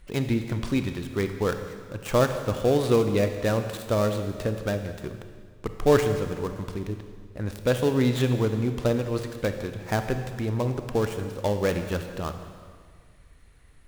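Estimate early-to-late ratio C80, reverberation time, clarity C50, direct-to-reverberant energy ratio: 9.0 dB, 1.8 s, 8.0 dB, 7.0 dB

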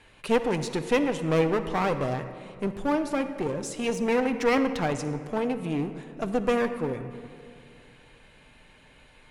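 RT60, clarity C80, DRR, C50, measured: 2.4 s, 11.0 dB, 7.0 dB, 10.0 dB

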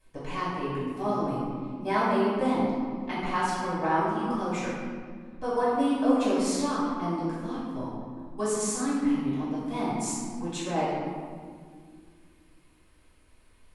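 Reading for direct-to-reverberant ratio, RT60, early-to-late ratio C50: -11.0 dB, 2.0 s, -2.0 dB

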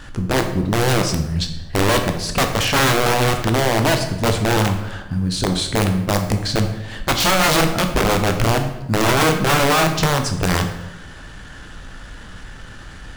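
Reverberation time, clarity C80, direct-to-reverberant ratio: 0.95 s, 10.5 dB, 5.0 dB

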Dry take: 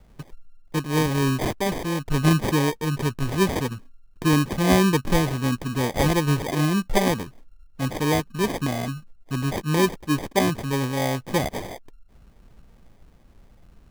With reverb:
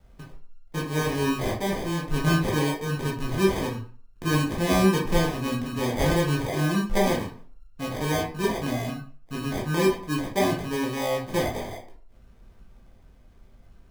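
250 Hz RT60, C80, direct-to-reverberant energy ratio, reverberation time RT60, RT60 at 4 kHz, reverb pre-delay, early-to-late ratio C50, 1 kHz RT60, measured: 0.40 s, 12.0 dB, -3.5 dB, 0.45 s, 0.30 s, 11 ms, 7.0 dB, 0.45 s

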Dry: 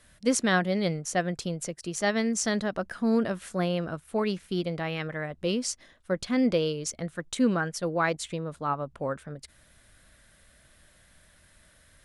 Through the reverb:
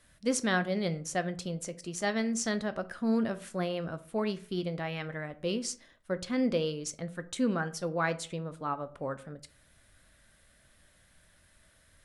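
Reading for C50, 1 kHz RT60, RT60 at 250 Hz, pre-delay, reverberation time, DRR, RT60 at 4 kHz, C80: 17.5 dB, 0.40 s, 0.45 s, 7 ms, 0.40 s, 11.0 dB, 0.25 s, 22.0 dB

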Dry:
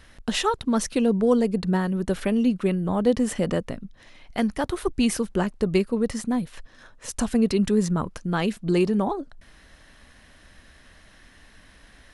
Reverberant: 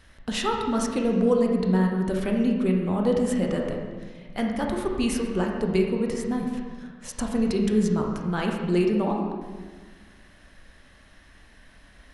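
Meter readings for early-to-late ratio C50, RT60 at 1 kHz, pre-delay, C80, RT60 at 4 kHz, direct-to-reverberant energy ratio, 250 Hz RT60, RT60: 2.5 dB, 1.4 s, 20 ms, 4.5 dB, 1.2 s, 0.5 dB, 1.8 s, 1.5 s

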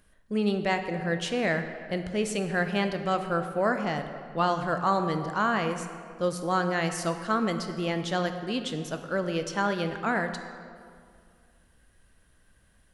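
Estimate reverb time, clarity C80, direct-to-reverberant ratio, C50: 2.2 s, 9.0 dB, 7.0 dB, 8.0 dB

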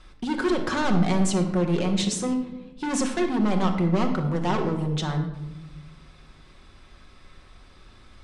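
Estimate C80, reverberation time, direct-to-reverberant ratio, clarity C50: 10.5 dB, 1.1 s, 3.0 dB, 8.0 dB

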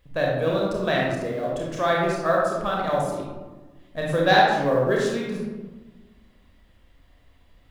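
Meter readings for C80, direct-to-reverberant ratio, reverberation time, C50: 3.0 dB, -3.5 dB, 1.3 s, -0.5 dB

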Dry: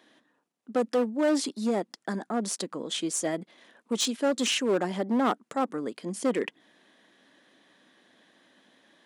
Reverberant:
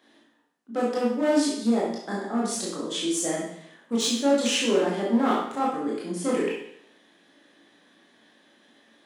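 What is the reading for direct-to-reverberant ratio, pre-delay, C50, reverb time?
-5.5 dB, 18 ms, 1.0 dB, 0.70 s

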